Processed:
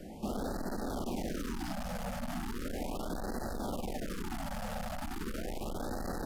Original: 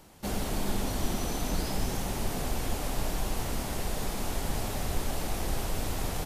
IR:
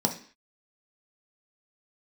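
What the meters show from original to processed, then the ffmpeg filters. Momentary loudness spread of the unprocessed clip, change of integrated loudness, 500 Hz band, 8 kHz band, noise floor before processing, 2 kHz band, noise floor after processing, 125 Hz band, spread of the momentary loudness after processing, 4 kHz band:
2 LU, −5.5 dB, −3.0 dB, −11.5 dB, −35 dBFS, −5.5 dB, −39 dBFS, −8.5 dB, 3 LU, −9.5 dB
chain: -filter_complex "[0:a]highshelf=frequency=2400:gain=-12,asplit=2[link_01][link_02];[link_02]alimiter=level_in=5dB:limit=-24dB:level=0:latency=1:release=68,volume=-5dB,volume=1dB[link_03];[link_01][link_03]amix=inputs=2:normalize=0,acrossover=split=350|3000[link_04][link_05][link_06];[link_04]acompressor=threshold=-29dB:ratio=3[link_07];[link_07][link_05][link_06]amix=inputs=3:normalize=0,asoftclip=type=hard:threshold=-37.5dB,asplit=2[link_08][link_09];[1:a]atrim=start_sample=2205,lowpass=2600[link_10];[link_09][link_10]afir=irnorm=-1:irlink=0,volume=-17dB[link_11];[link_08][link_11]amix=inputs=2:normalize=0,afftfilt=real='re*(1-between(b*sr/1024,330*pow(2800/330,0.5+0.5*sin(2*PI*0.37*pts/sr))/1.41,330*pow(2800/330,0.5+0.5*sin(2*PI*0.37*pts/sr))*1.41))':imag='im*(1-between(b*sr/1024,330*pow(2800/330,0.5+0.5*sin(2*PI*0.37*pts/sr))/1.41,330*pow(2800/330,0.5+0.5*sin(2*PI*0.37*pts/sr))*1.41))':win_size=1024:overlap=0.75,volume=1dB"

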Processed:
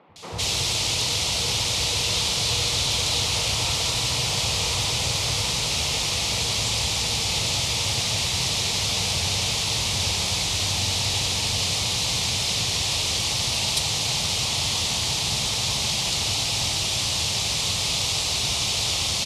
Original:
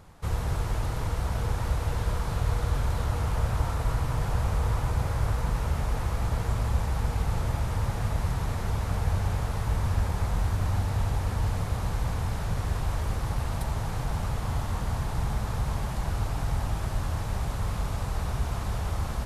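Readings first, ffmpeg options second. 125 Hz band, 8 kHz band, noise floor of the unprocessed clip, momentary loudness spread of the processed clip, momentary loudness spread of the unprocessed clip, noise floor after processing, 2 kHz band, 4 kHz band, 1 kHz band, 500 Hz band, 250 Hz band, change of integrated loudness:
−3.5 dB, +21.5 dB, −32 dBFS, 1 LU, 3 LU, −26 dBFS, +11.5 dB, +25.0 dB, +2.5 dB, +3.0 dB, +0.5 dB, +8.0 dB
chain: -filter_complex "[0:a]aexciter=amount=10:drive=7.7:freq=2400,highpass=130,lowpass=5100,acrossover=split=200|1600[link_01][link_02][link_03];[link_01]adelay=90[link_04];[link_03]adelay=160[link_05];[link_04][link_02][link_05]amix=inputs=3:normalize=0,volume=3.5dB"

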